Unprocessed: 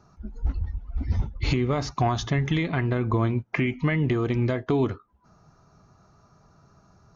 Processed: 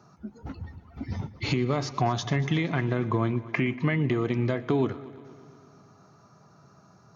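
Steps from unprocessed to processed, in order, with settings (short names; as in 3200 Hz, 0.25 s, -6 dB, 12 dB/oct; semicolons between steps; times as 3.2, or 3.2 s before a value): HPF 110 Hz 24 dB/oct; in parallel at -1.5 dB: compressor, threshold -34 dBFS, peak gain reduction 15 dB; on the sum: multi-head echo 0.118 s, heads first and second, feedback 60%, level -21.5 dB; gain -3 dB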